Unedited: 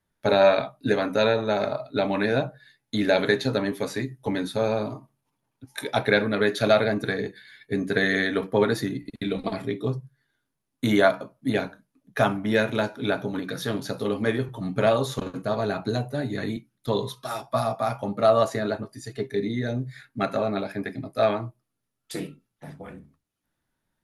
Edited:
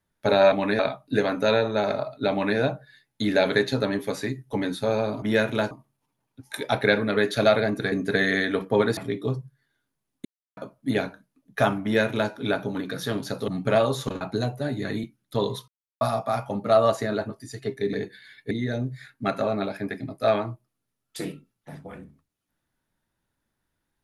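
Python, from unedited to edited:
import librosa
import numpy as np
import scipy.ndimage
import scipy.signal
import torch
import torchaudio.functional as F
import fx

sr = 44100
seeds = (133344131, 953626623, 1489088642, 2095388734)

y = fx.edit(x, sr, fx.duplicate(start_s=2.04, length_s=0.27, to_s=0.52),
    fx.move(start_s=7.16, length_s=0.58, to_s=19.46),
    fx.cut(start_s=8.79, length_s=0.77),
    fx.silence(start_s=10.84, length_s=0.32),
    fx.duplicate(start_s=12.42, length_s=0.49, to_s=4.95),
    fx.cut(start_s=14.07, length_s=0.52),
    fx.cut(start_s=15.32, length_s=0.42),
    fx.silence(start_s=17.21, length_s=0.33), tone=tone)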